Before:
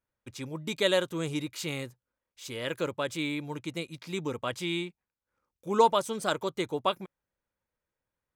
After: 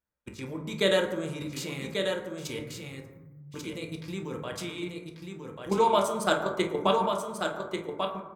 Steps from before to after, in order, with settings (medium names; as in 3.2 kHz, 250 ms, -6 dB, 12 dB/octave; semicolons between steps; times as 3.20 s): 2.59–3.54 s: inverse Chebyshev band-stop 520–8100 Hz, stop band 70 dB; level held to a coarse grid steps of 14 dB; delay 1140 ms -5.5 dB; reverberation RT60 1.1 s, pre-delay 7 ms, DRR 1 dB; trim +4.5 dB